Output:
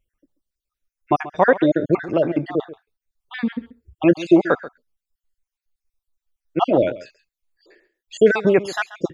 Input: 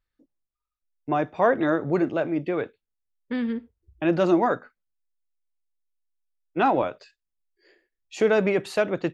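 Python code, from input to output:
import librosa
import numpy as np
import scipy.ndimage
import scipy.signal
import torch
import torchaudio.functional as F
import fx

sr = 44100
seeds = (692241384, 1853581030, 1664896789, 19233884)

p1 = fx.spec_dropout(x, sr, seeds[0], share_pct=54)
p2 = p1 + fx.echo_single(p1, sr, ms=135, db=-16.5, dry=0)
y = p2 * librosa.db_to_amplitude(8.0)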